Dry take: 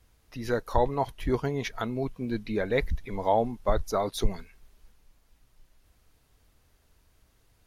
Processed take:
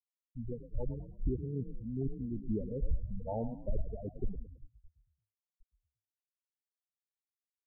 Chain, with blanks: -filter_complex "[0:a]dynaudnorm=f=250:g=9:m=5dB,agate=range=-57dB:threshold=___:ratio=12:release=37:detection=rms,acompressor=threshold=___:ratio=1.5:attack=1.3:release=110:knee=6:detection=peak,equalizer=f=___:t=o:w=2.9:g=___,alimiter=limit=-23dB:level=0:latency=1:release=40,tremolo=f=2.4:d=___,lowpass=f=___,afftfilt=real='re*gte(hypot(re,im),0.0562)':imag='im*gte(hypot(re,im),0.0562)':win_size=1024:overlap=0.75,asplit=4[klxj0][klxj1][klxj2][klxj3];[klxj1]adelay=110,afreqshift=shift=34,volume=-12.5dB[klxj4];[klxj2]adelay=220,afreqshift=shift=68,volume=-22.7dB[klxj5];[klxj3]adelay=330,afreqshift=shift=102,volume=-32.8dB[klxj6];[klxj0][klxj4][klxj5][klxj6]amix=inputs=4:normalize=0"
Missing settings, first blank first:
-47dB, -27dB, 1k, -15, 0.44, 1.3k